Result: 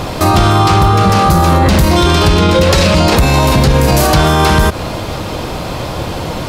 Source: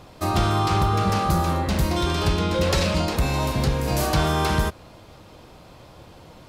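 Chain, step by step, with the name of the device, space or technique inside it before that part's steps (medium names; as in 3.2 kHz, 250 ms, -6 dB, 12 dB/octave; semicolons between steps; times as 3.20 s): loud club master (compression 3:1, threshold -23 dBFS, peak gain reduction 5.5 dB; hard clipper -17 dBFS, distortion -39 dB; loudness maximiser +27 dB); trim -1 dB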